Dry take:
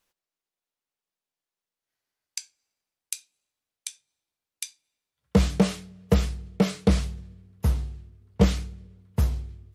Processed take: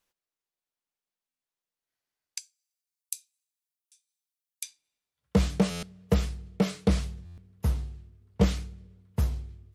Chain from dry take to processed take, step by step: 2.39–4.63 s: differentiator; buffer glitch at 1.28/2.88/3.79/5.70/7.25 s, samples 512, times 10; trim -3.5 dB

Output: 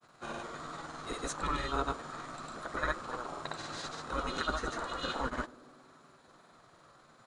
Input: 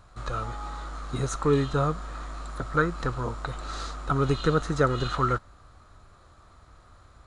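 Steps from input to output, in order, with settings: doubling 13 ms -12.5 dB; granulator, pitch spread up and down by 0 st; spectral gate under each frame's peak -10 dB weak; band-passed feedback delay 93 ms, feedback 81%, band-pass 320 Hz, level -16.5 dB

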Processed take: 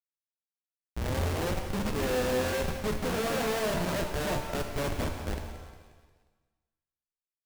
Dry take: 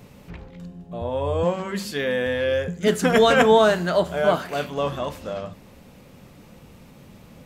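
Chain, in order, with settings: low-pass that closes with the level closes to 2.1 kHz, closed at -17.5 dBFS; resonant high shelf 5.1 kHz +8.5 dB, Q 1.5; 3.97–4.76 s: short-mantissa float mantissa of 2-bit; Schmitt trigger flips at -23.5 dBFS; feedback delay 178 ms, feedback 47%, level -13 dB; pitch-shifted reverb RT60 1.1 s, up +7 st, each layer -8 dB, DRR 4.5 dB; trim -7 dB

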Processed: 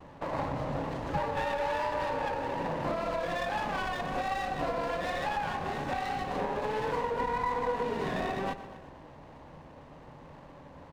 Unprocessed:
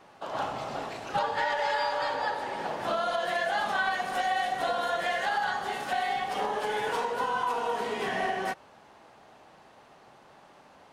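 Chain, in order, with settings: RIAA curve playback; feedback delay 120 ms, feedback 54%, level -15.5 dB; vibrato 1.2 Hz 50 cents; rippled EQ curve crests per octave 1.1, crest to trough 7 dB; compression 2:1, threshold -34 dBFS, peak gain reduction 7.5 dB; sliding maximum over 9 samples; trim +2 dB

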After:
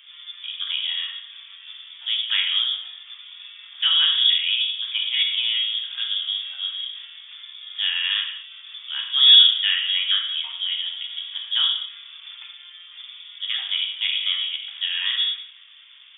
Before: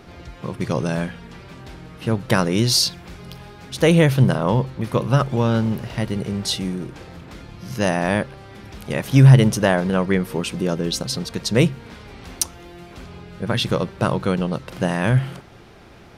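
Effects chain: reverberation, pre-delay 3 ms, DRR 0 dB; frequency inversion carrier 3.5 kHz; Bessel high-pass 1.8 kHz, order 8; trim -5 dB

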